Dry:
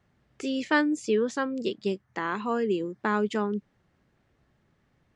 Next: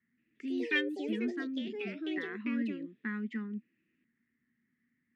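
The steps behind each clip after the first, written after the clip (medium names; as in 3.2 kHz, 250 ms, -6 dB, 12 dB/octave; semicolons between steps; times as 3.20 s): two resonant band-passes 680 Hz, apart 3 oct; ever faster or slower copies 177 ms, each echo +5 st, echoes 2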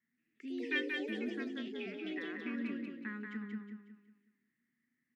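bass shelf 120 Hz -11 dB; on a send: feedback delay 183 ms, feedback 38%, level -4 dB; on the sum: trim -4.5 dB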